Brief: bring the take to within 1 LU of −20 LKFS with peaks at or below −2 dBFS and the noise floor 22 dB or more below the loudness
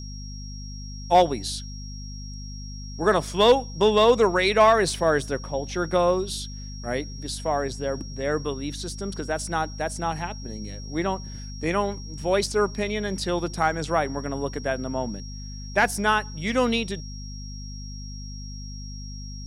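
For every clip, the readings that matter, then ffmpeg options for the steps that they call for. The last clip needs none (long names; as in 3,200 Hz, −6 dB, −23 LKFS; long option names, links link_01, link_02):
mains hum 50 Hz; hum harmonics up to 250 Hz; level of the hum −34 dBFS; interfering tone 5,600 Hz; level of the tone −42 dBFS; integrated loudness −24.5 LKFS; sample peak −8.0 dBFS; target loudness −20.0 LKFS
→ -af "bandreject=frequency=50:width_type=h:width=4,bandreject=frequency=100:width_type=h:width=4,bandreject=frequency=150:width_type=h:width=4,bandreject=frequency=200:width_type=h:width=4,bandreject=frequency=250:width_type=h:width=4"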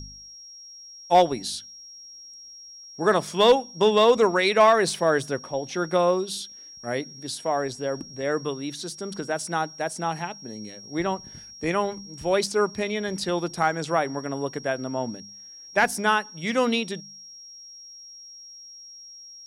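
mains hum none found; interfering tone 5,600 Hz; level of the tone −42 dBFS
→ -af "bandreject=frequency=5600:width=30"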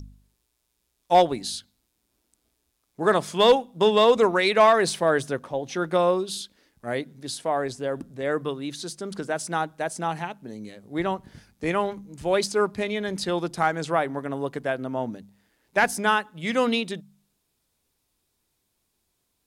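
interfering tone none found; integrated loudness −24.5 LKFS; sample peak −8.0 dBFS; target loudness −20.0 LKFS
→ -af "volume=4.5dB"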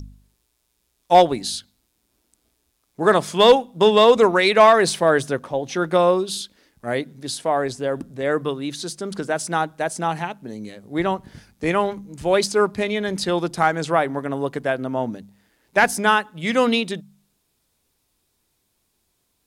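integrated loudness −20.0 LKFS; sample peak −3.5 dBFS; background noise floor −71 dBFS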